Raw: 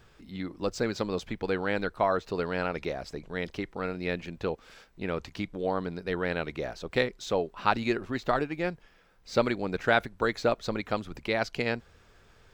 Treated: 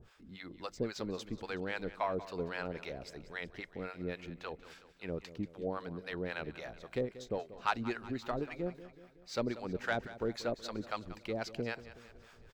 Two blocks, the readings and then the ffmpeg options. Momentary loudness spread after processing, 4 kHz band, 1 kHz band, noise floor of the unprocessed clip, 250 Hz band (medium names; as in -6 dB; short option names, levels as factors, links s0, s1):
11 LU, -8.0 dB, -9.0 dB, -60 dBFS, -7.5 dB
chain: -filter_complex "[0:a]areverse,acompressor=mode=upward:threshold=0.00794:ratio=2.5,areverse,asoftclip=type=tanh:threshold=0.237,acrossover=split=640[s0][s1];[s0]aeval=exprs='val(0)*(1-1/2+1/2*cos(2*PI*3.7*n/s))':c=same[s2];[s1]aeval=exprs='val(0)*(1-1/2-1/2*cos(2*PI*3.7*n/s))':c=same[s3];[s2][s3]amix=inputs=2:normalize=0,aecho=1:1:186|372|558|744|930:0.168|0.0923|0.0508|0.0279|0.0154,volume=0.668"